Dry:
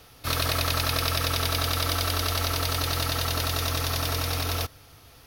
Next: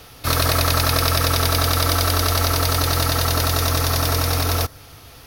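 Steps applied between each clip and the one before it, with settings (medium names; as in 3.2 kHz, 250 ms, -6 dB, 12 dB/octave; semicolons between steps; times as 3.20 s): dynamic bell 3 kHz, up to -6 dB, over -45 dBFS, Q 1.4; trim +8.5 dB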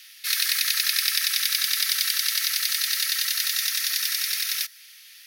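elliptic high-pass 1.8 kHz, stop band 70 dB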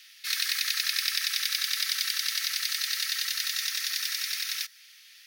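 peaking EQ 12 kHz -9 dB 0.61 oct; trim -3.5 dB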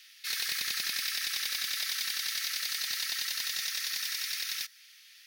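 hard clipper -24 dBFS, distortion -11 dB; trim -2.5 dB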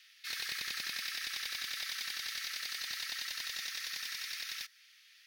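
treble shelf 5 kHz -9 dB; trim -2.5 dB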